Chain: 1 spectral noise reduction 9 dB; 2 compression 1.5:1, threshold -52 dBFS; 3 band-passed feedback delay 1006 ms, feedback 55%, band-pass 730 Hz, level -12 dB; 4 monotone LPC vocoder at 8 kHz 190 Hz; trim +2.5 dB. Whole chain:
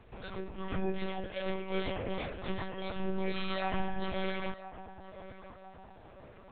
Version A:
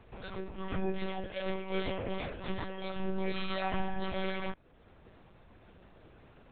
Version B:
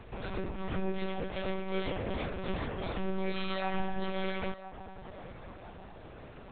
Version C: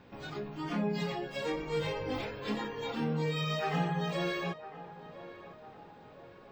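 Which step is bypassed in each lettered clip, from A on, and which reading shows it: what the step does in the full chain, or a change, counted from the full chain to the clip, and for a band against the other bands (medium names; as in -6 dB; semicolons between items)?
3, momentary loudness spread change -10 LU; 1, 125 Hz band +1.5 dB; 4, 125 Hz band +3.5 dB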